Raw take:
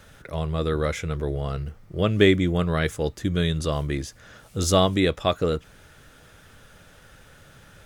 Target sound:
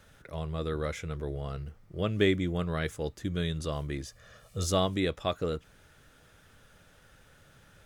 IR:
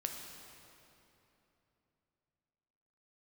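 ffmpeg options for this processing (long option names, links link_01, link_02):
-filter_complex "[0:a]asettb=1/sr,asplit=3[link_01][link_02][link_03];[link_01]atrim=end=4.054[link_04];[link_02]atrim=start=4.05:end=4.66,asetpts=PTS-STARTPTS,afade=type=in:duration=0.004:curve=qsin,afade=type=out:start_time=0.606:duration=0.004:curve=qsin,aecho=1:1:1.7:0.61,atrim=end_sample=26901[link_05];[link_03]atrim=start=4.656[link_06];[link_04][link_05]acrossfade=duration=0.004:curve1=hsin:curve2=qsin[link_07];[link_07][link_06]acrossfade=duration=0.004:curve1=qsin:curve2=hsin,volume=-8dB"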